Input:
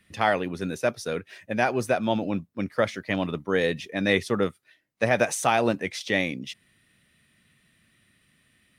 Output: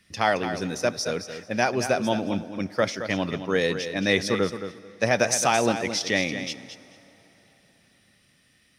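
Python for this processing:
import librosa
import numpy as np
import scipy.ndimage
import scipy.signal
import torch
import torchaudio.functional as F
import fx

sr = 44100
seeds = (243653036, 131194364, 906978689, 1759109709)

y = fx.peak_eq(x, sr, hz=5400.0, db=12.5, octaves=0.54)
y = fx.echo_feedback(y, sr, ms=220, feedback_pct=16, wet_db=-10)
y = fx.rev_plate(y, sr, seeds[0], rt60_s=4.1, hf_ratio=0.8, predelay_ms=0, drr_db=19.5)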